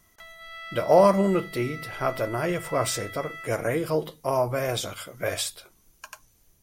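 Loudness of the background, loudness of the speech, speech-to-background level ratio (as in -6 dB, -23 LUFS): -39.5 LUFS, -26.0 LUFS, 13.5 dB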